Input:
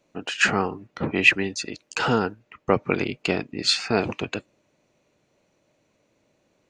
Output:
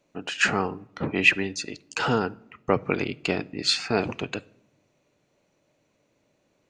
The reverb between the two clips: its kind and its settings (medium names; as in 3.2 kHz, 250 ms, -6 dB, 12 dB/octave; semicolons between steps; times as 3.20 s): simulated room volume 2200 m³, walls furnished, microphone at 0.31 m; trim -2 dB